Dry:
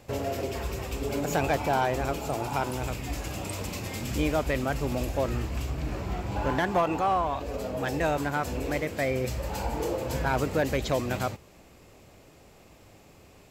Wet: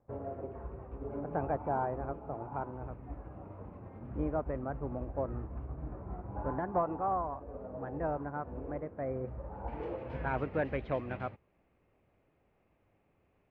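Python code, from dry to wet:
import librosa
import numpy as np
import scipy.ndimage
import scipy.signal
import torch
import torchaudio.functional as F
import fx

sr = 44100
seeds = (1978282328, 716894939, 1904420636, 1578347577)

y = fx.lowpass(x, sr, hz=fx.steps((0.0, 1300.0), (9.68, 2500.0)), slope=24)
y = fx.upward_expand(y, sr, threshold_db=-47.0, expansion=1.5)
y = F.gain(torch.from_numpy(y), -5.0).numpy()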